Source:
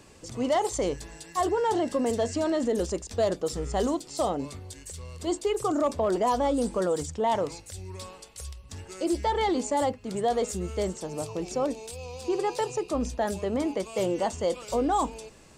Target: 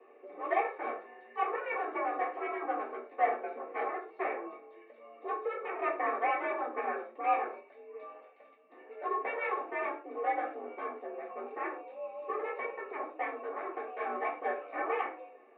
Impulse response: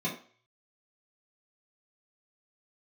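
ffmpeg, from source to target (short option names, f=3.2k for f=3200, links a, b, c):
-filter_complex "[0:a]aeval=exprs='0.141*(cos(1*acos(clip(val(0)/0.141,-1,1)))-cos(1*PI/2))+0.0708*(cos(3*acos(clip(val(0)/0.141,-1,1)))-cos(3*PI/2))+0.01*(cos(7*acos(clip(val(0)/0.141,-1,1)))-cos(7*PI/2))':c=same[a];[1:a]atrim=start_sample=2205,afade=t=out:st=0.2:d=0.01,atrim=end_sample=9261[b];[a][b]afir=irnorm=-1:irlink=0,highpass=f=340:t=q:w=0.5412,highpass=f=340:t=q:w=1.307,lowpass=f=2.2k:t=q:w=0.5176,lowpass=f=2.2k:t=q:w=0.7071,lowpass=f=2.2k:t=q:w=1.932,afreqshift=68,volume=-9dB"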